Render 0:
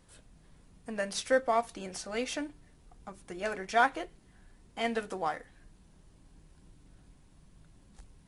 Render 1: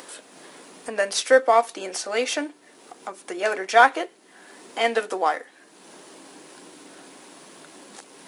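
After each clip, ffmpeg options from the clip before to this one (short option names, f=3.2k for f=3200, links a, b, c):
-filter_complex "[0:a]highpass=f=310:w=0.5412,highpass=f=310:w=1.3066,asplit=2[a][b];[b]acompressor=mode=upward:threshold=-38dB:ratio=2.5,volume=3dB[c];[a][c]amix=inputs=2:normalize=0,volume=3dB"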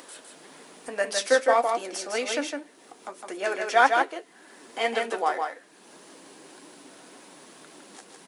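-af "flanger=delay=2.9:depth=6.3:regen=57:speed=1.8:shape=triangular,aecho=1:1:158:0.596"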